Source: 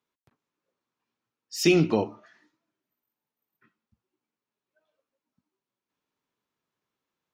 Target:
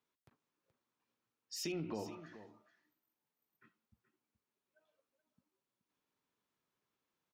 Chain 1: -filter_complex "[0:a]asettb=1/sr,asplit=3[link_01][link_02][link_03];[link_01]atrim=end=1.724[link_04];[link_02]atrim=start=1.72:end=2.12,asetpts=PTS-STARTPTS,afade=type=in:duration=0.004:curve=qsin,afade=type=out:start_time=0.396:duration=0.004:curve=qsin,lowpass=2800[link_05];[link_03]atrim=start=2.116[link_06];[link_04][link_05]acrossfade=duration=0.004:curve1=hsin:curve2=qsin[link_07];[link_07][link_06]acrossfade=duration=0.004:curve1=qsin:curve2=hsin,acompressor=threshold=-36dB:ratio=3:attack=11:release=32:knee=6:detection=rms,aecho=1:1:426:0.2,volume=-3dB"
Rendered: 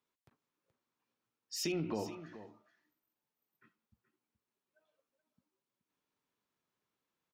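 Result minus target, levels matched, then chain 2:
downward compressor: peak gain reduction −4.5 dB
-filter_complex "[0:a]asettb=1/sr,asplit=3[link_01][link_02][link_03];[link_01]atrim=end=1.724[link_04];[link_02]atrim=start=1.72:end=2.12,asetpts=PTS-STARTPTS,afade=type=in:duration=0.004:curve=qsin,afade=type=out:start_time=0.396:duration=0.004:curve=qsin,lowpass=2800[link_05];[link_03]atrim=start=2.116[link_06];[link_04][link_05]acrossfade=duration=0.004:curve1=hsin:curve2=qsin[link_07];[link_07][link_06]acrossfade=duration=0.004:curve1=qsin:curve2=hsin,acompressor=threshold=-42.5dB:ratio=3:attack=11:release=32:knee=6:detection=rms,aecho=1:1:426:0.2,volume=-3dB"

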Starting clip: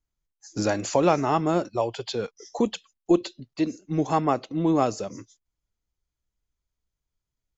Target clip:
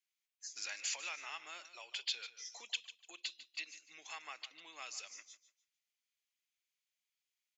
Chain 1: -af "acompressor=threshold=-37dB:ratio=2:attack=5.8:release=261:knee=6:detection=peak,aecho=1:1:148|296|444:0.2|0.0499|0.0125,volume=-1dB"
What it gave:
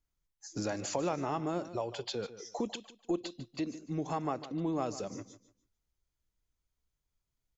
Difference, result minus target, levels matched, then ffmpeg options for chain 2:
2,000 Hz band −10.5 dB
-af "acompressor=threshold=-37dB:ratio=2:attack=5.8:release=261:knee=6:detection=peak,highpass=frequency=2400:width_type=q:width=2.3,aecho=1:1:148|296|444:0.2|0.0499|0.0125,volume=-1dB"

